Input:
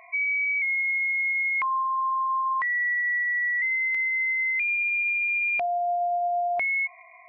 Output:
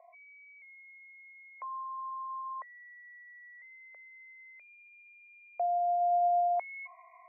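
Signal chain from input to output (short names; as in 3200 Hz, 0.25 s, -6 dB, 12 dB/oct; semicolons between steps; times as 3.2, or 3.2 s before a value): Chebyshev band-pass 510–2400 Hz, order 3; low-pass sweep 620 Hz -> 1300 Hz, 5.98–7.09; gain -7.5 dB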